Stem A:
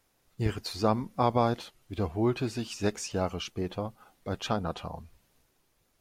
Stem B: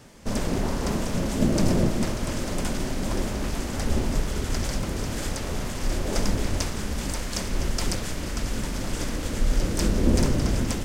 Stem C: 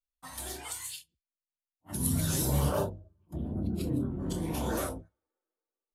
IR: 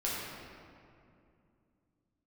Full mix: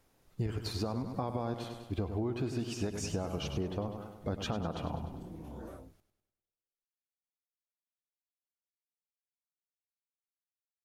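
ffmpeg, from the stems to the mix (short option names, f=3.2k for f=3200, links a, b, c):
-filter_complex "[0:a]alimiter=limit=-20.5dB:level=0:latency=1:release=72,volume=1dB,asplit=2[a][b];[b]volume=-10dB[c];[2:a]highshelf=f=2.8k:g=-11,adelay=900,volume=-15.5dB[d];[c]aecho=0:1:100|200|300|400|500|600|700|800:1|0.52|0.27|0.141|0.0731|0.038|0.0198|0.0103[e];[a][d][e]amix=inputs=3:normalize=0,tiltshelf=f=970:g=3.5,acompressor=threshold=-31dB:ratio=6"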